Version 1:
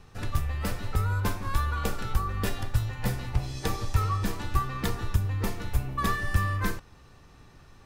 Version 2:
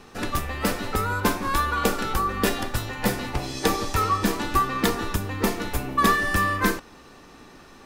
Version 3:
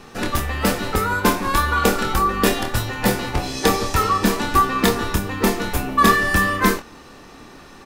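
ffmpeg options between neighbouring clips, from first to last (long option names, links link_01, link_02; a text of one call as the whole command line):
ffmpeg -i in.wav -af "lowshelf=frequency=170:width_type=q:width=1.5:gain=-11,volume=9dB" out.wav
ffmpeg -i in.wav -filter_complex "[0:a]asplit=2[link_01][link_02];[link_02]adelay=26,volume=-7dB[link_03];[link_01][link_03]amix=inputs=2:normalize=0,volume=4.5dB" out.wav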